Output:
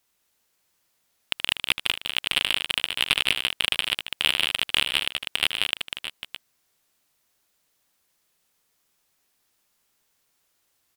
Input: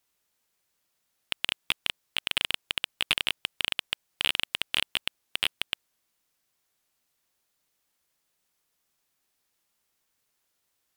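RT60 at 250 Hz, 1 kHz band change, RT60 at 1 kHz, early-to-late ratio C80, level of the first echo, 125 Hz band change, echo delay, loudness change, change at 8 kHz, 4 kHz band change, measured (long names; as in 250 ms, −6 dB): no reverb audible, +5.5 dB, no reverb audible, no reverb audible, −11.5 dB, +6.0 dB, 77 ms, +5.5 dB, +5.5 dB, +5.5 dB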